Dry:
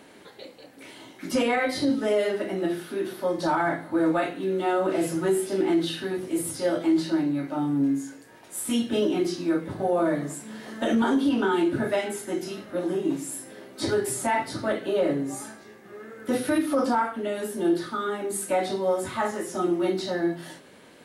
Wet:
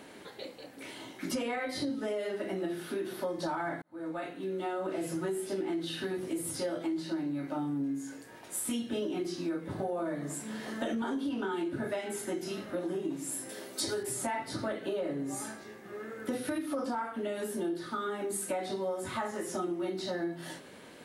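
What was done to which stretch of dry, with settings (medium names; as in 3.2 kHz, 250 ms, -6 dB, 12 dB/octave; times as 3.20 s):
3.82–5.27 s: fade in
13.49–14.03 s: tone controls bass -5 dB, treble +11 dB
whole clip: compression 5:1, threshold -32 dBFS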